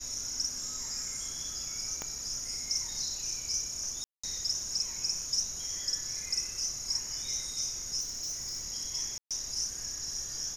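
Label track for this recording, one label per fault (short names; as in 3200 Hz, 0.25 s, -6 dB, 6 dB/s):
2.020000	2.020000	pop -20 dBFS
4.040000	4.240000	gap 0.195 s
8.000000	8.650000	clipped -32.5 dBFS
9.180000	9.310000	gap 0.127 s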